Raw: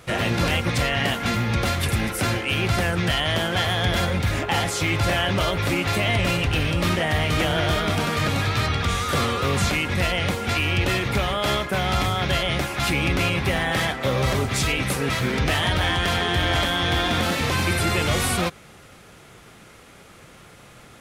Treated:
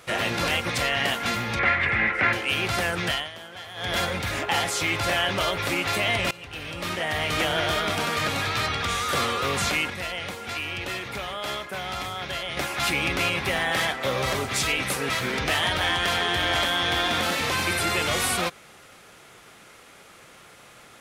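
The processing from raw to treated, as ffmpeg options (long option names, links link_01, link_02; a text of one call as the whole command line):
ffmpeg -i in.wav -filter_complex "[0:a]asettb=1/sr,asplit=3[link_01][link_02][link_03];[link_01]atrim=end=1.594[link_04];[link_02]atrim=start=1.59:end=2.33,asetpts=PTS-STARTPTS,afade=type=in:duration=0.004:curve=qsin,afade=type=out:start_time=0.736:duration=0.004:curve=qsin,lowpass=frequency=2000:width_type=q:width=4.1[link_05];[link_03]atrim=start=2.326[link_06];[link_04][link_05]acrossfade=duration=0.004:curve1=hsin:curve2=qsin[link_07];[link_07][link_06]acrossfade=duration=0.004:curve1=qsin:curve2=hsin,asplit=6[link_08][link_09][link_10][link_11][link_12][link_13];[link_08]atrim=end=3.3,asetpts=PTS-STARTPTS,afade=type=out:start_time=3.08:duration=0.22:silence=0.16788[link_14];[link_09]atrim=start=3.3:end=3.74,asetpts=PTS-STARTPTS,volume=-15.5dB[link_15];[link_10]atrim=start=3.74:end=6.31,asetpts=PTS-STARTPTS,afade=type=in:duration=0.22:silence=0.16788,afade=type=out:start_time=2.566:duration=0.004:curve=hsin:silence=0.0891251[link_16];[link_11]atrim=start=6.31:end=9.902,asetpts=PTS-STARTPTS,afade=type=in:duration=1.04:silence=0.0891251[link_17];[link_12]atrim=start=9.898:end=12.572,asetpts=PTS-STARTPTS,volume=-6.5dB[link_18];[link_13]atrim=start=12.568[link_19];[link_14][link_15][link_16][link_17]concat=n=4:v=0:a=1[link_20];[link_20][link_18]acrossfade=duration=0.004:curve1=hsin:curve2=hsin[link_21];[link_21][link_19]acrossfade=duration=0.004:curve1=hsin:curve2=hsin,lowshelf=frequency=270:gain=-12" out.wav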